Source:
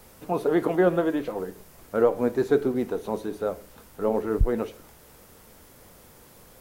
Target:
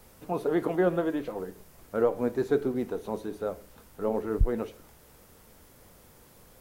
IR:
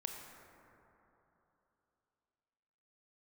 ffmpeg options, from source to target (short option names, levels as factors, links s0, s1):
-af "lowshelf=f=150:g=3,volume=0.596"